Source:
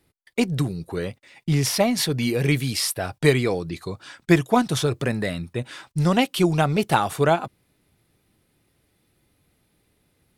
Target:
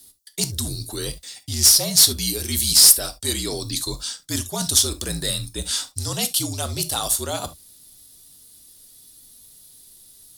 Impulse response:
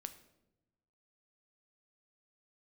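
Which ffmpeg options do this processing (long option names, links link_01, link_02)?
-filter_complex "[0:a]areverse,acompressor=threshold=-28dB:ratio=6,areverse,afreqshift=-55,aexciter=amount=12.3:drive=4:freq=3500,acontrast=49[link_01];[1:a]atrim=start_sample=2205,atrim=end_sample=3528[link_02];[link_01][link_02]afir=irnorm=-1:irlink=0"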